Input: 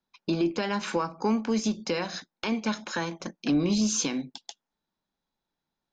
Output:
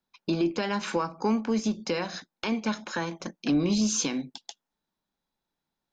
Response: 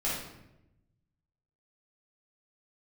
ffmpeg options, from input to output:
-filter_complex "[0:a]asplit=3[s0][s1][s2];[s0]afade=t=out:st=1.39:d=0.02[s3];[s1]adynamicequalizer=threshold=0.00562:dfrequency=2300:dqfactor=0.7:tfrequency=2300:tqfactor=0.7:attack=5:release=100:ratio=0.375:range=2:mode=cutabove:tftype=highshelf,afade=t=in:st=1.39:d=0.02,afade=t=out:st=3.07:d=0.02[s4];[s2]afade=t=in:st=3.07:d=0.02[s5];[s3][s4][s5]amix=inputs=3:normalize=0"

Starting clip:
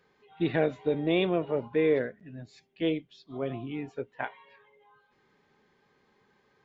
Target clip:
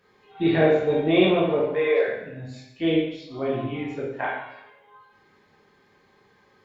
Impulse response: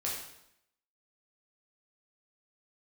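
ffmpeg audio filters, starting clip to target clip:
-filter_complex "[0:a]asettb=1/sr,asplit=3[s0][s1][s2];[s0]atrim=end=1.604[s3];[s1]atrim=start=1.6:end=2.08,asetpts=PTS-STARTPTS,afade=t=in:d=0.004:c=qsin,afade=t=out:st=0.476:d=0.004:c=qsin,highpass=f=480:w=0.5412,highpass=f=480:w=1.3066[s4];[s2]atrim=start=2.076[s5];[s3][s4]acrossfade=d=0.004:c1=hsin:c2=qsin[s6];[s6][s5]acrossfade=d=0.004:c1=qsin:c2=hsin[s7];[1:a]atrim=start_sample=2205,asetrate=41895,aresample=44100[s8];[s7][s8]afir=irnorm=-1:irlink=0,volume=1.58"

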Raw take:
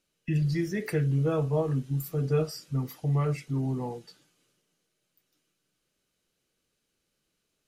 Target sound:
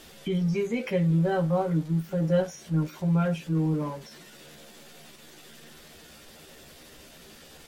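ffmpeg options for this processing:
-filter_complex "[0:a]aeval=exprs='val(0)+0.5*0.00794*sgn(val(0))':c=same,acrossover=split=4000[s0][s1];[s1]acompressor=threshold=0.002:ratio=4:attack=1:release=60[s2];[s0][s2]amix=inputs=2:normalize=0,asetrate=52444,aresample=44100,atempo=0.840896,asplit=2[s3][s4];[s4]adelay=13,volume=0.562[s5];[s3][s5]amix=inputs=2:normalize=0" -ar 48000 -c:a libmp3lame -b:a 64k

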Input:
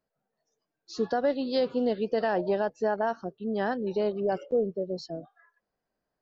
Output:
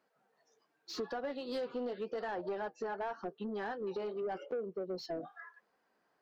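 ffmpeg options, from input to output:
-filter_complex "[0:a]highpass=f=190:p=1,equalizer=f=610:w=3.7:g=-7,acompressor=threshold=0.00891:ratio=20,flanger=delay=3.2:depth=5.7:regen=-59:speed=0.86:shape=triangular,asplit=2[s0][s1];[s1]highpass=f=720:p=1,volume=7.08,asoftclip=type=tanh:threshold=0.0168[s2];[s0][s2]amix=inputs=2:normalize=0,lowpass=f=1600:p=1,volume=0.501,volume=2.37"

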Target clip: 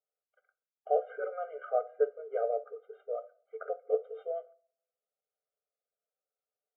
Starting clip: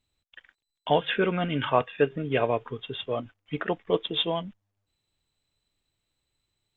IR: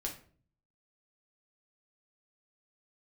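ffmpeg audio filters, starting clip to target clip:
-filter_complex "[0:a]lowpass=f=1200:w=0.5412,lowpass=f=1200:w=1.3066,asplit=2[s0][s1];[1:a]atrim=start_sample=2205[s2];[s1][s2]afir=irnorm=-1:irlink=0,volume=0.376[s3];[s0][s3]amix=inputs=2:normalize=0,afftfilt=real='re*eq(mod(floor(b*sr/1024/400),2),1)':imag='im*eq(mod(floor(b*sr/1024/400),2),1)':win_size=1024:overlap=0.75,volume=0.473"

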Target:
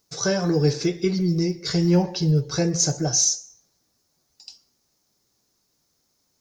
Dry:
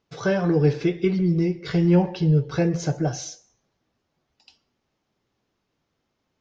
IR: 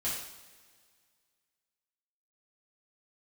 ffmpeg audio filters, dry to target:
-af "aexciter=amount=7.4:drive=6.1:freq=4400,volume=0.891"

